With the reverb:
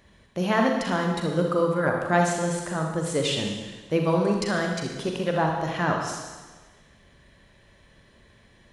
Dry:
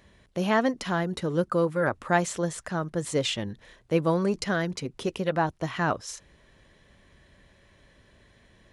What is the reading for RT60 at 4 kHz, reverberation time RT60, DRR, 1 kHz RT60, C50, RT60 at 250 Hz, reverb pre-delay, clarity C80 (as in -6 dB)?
1.3 s, 1.3 s, 1.5 dB, 1.3 s, 2.5 dB, 1.3 s, 37 ms, 5.0 dB